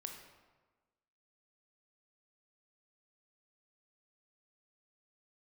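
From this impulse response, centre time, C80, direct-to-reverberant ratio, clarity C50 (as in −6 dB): 36 ms, 7.0 dB, 3.0 dB, 5.0 dB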